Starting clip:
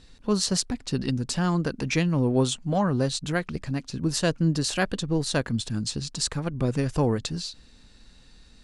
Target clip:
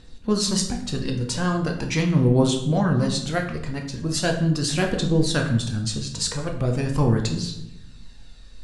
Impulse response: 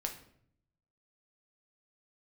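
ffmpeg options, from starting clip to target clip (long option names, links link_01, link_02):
-filter_complex "[0:a]aphaser=in_gain=1:out_gain=1:delay=2.2:decay=0.42:speed=0.4:type=triangular[link_01];[1:a]atrim=start_sample=2205,asetrate=33075,aresample=44100[link_02];[link_01][link_02]afir=irnorm=-1:irlink=0"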